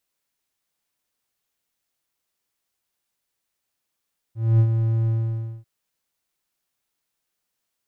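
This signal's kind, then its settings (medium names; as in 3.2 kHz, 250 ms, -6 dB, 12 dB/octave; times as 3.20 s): ADSR triangle 113 Hz, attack 245 ms, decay 70 ms, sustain -6.5 dB, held 0.73 s, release 563 ms -9.5 dBFS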